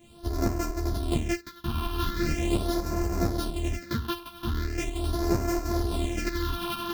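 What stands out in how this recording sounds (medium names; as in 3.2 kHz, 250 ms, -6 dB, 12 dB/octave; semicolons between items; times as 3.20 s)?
a buzz of ramps at a fixed pitch in blocks of 128 samples; phasing stages 6, 0.41 Hz, lowest notch 520–3300 Hz; tremolo saw up 4.3 Hz, depth 45%; a shimmering, thickened sound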